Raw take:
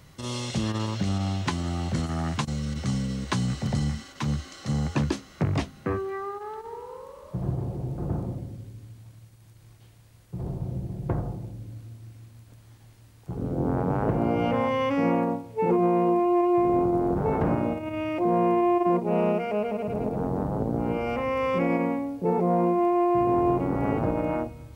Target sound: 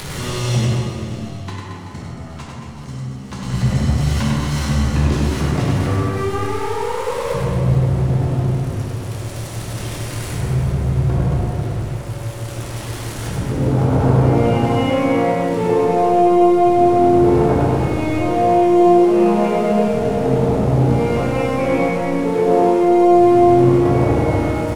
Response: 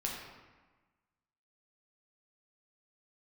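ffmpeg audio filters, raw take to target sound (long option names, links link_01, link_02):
-filter_complex "[0:a]aeval=exprs='val(0)+0.5*0.0282*sgn(val(0))':channel_layout=same,asettb=1/sr,asplit=3[link_01][link_02][link_03];[link_01]atrim=end=0.654[link_04];[link_02]atrim=start=0.65:end=3.43,asetpts=PTS-STARTPTS,afade=type=in:duration=0.004:curve=qsin,afade=type=out:start_time=2.776:duration=0.004:curve=qsin,agate=range=-27dB:threshold=-21dB:ratio=16:detection=peak[link_05];[link_03]atrim=start=3.426[link_06];[link_04][link_05]acrossfade=duration=0.004:curve1=hsin:curve2=qsin[link_07];[link_07][link_06]acrossfade=duration=0.004:curve1=qsin:curve2=hsin,adynamicequalizer=threshold=0.0178:dfrequency=100:dqfactor=1.3:tfrequency=100:tqfactor=1.3:attack=5:release=100:ratio=0.375:range=1.5:mode=boostabove:tftype=bell,acompressor=mode=upward:threshold=-25dB:ratio=2.5,aecho=1:1:100|225|381.2|576.6|820.7:0.631|0.398|0.251|0.158|0.1[link_08];[1:a]atrim=start_sample=2205,afade=type=out:start_time=0.39:duration=0.01,atrim=end_sample=17640,asetrate=22932,aresample=44100[link_09];[link_08][link_09]afir=irnorm=-1:irlink=0,volume=-3dB"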